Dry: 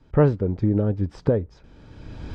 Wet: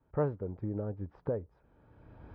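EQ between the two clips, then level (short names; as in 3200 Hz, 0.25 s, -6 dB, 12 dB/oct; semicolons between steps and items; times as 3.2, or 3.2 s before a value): HPF 160 Hz 6 dB/oct; LPF 1100 Hz 12 dB/oct; bell 250 Hz -8.5 dB 2.3 oct; -6.0 dB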